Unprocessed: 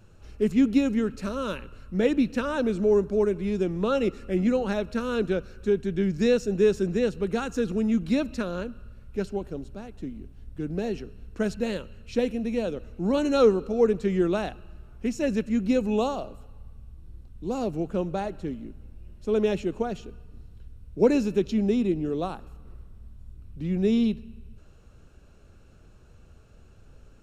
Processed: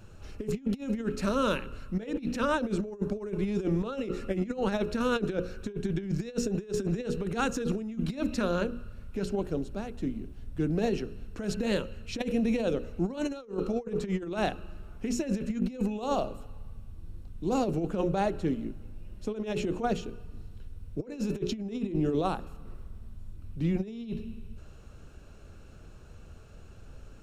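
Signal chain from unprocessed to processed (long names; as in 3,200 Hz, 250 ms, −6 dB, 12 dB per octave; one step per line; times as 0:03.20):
mains-hum notches 60/120/180/240/300/360/420/480/540 Hz
compressor whose output falls as the input rises −29 dBFS, ratio −0.5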